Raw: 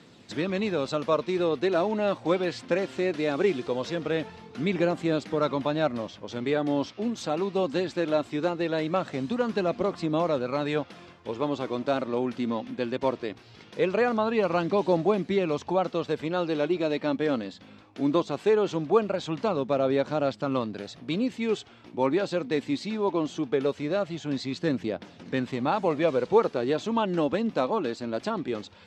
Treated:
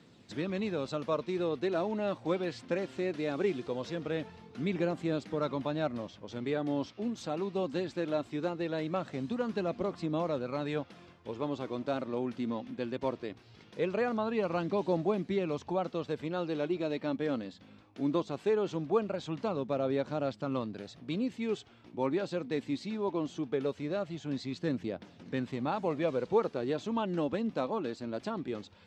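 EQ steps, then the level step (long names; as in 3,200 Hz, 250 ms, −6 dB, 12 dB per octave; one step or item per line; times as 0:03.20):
low-shelf EQ 260 Hz +5 dB
−8.0 dB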